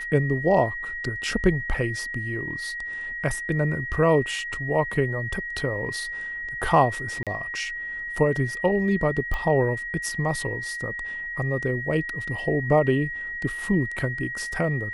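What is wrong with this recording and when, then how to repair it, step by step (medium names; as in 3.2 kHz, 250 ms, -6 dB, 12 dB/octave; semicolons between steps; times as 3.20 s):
whine 1.9 kHz -30 dBFS
7.23–7.27 s: dropout 37 ms
9.34 s: pop -17 dBFS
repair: de-click; band-stop 1.9 kHz, Q 30; interpolate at 7.23 s, 37 ms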